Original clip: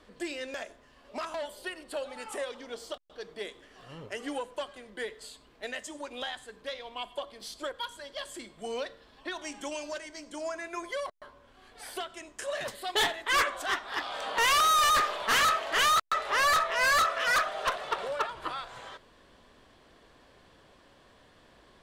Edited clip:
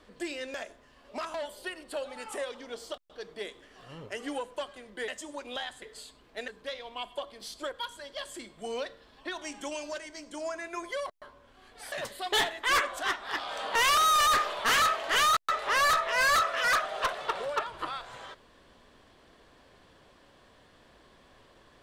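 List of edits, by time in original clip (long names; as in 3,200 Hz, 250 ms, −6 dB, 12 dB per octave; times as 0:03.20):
0:05.08–0:05.74: move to 0:06.48
0:11.92–0:12.55: remove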